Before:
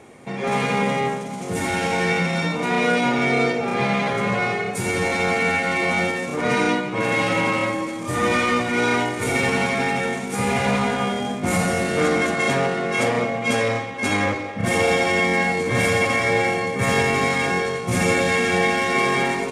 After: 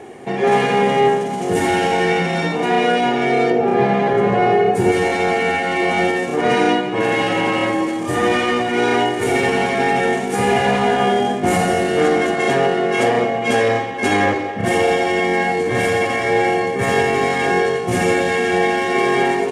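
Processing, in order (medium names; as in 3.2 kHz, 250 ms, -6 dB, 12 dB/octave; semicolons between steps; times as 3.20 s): 3.50–4.92 s: tilt shelf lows +5.5 dB, about 1.5 kHz; gain riding within 4 dB 0.5 s; small resonant body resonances 390/740/1700/2900 Hz, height 11 dB, ringing for 25 ms; trim -1 dB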